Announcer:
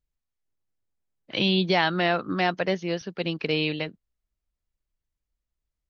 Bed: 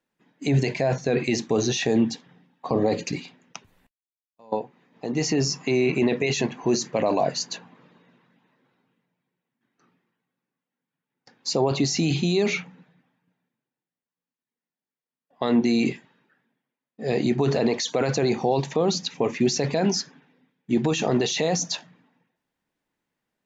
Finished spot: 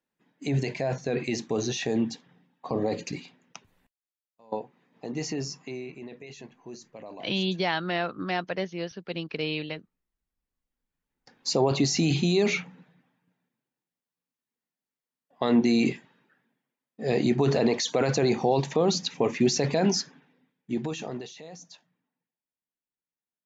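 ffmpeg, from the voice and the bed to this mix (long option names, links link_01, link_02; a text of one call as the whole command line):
ffmpeg -i stem1.wav -i stem2.wav -filter_complex "[0:a]adelay=5900,volume=-5dB[link_01];[1:a]volume=14dB,afade=type=out:start_time=4.98:duration=0.96:silence=0.177828,afade=type=in:start_time=10.12:duration=1.29:silence=0.105925,afade=type=out:start_time=19.92:duration=1.43:silence=0.1[link_02];[link_01][link_02]amix=inputs=2:normalize=0" out.wav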